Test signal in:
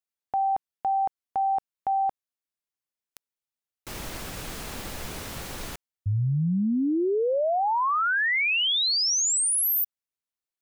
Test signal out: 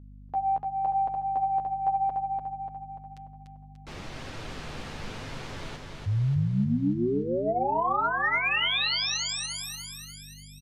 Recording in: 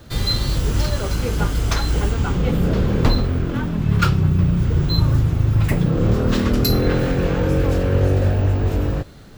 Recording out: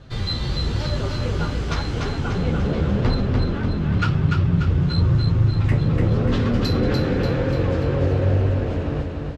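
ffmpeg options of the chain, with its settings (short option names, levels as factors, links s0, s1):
-filter_complex "[0:a]lowpass=4500,bandreject=f=409.6:t=h:w=4,bandreject=f=819.2:t=h:w=4,bandreject=f=1228.8:t=h:w=4,bandreject=f=1638.4:t=h:w=4,bandreject=f=2048:t=h:w=4,bandreject=f=2457.6:t=h:w=4,bandreject=f=2867.2:t=h:w=4,bandreject=f=3276.8:t=h:w=4,flanger=delay=7.4:depth=6.8:regen=8:speed=0.94:shape=sinusoidal,aeval=exprs='val(0)+0.00501*(sin(2*PI*50*n/s)+sin(2*PI*2*50*n/s)/2+sin(2*PI*3*50*n/s)/3+sin(2*PI*4*50*n/s)/4+sin(2*PI*5*50*n/s)/5)':c=same,asoftclip=type=tanh:threshold=0.282,asplit=2[s0][s1];[s1]aecho=0:1:293|586|879|1172|1465|1758|2051:0.631|0.341|0.184|0.0994|0.0537|0.029|0.0156[s2];[s0][s2]amix=inputs=2:normalize=0"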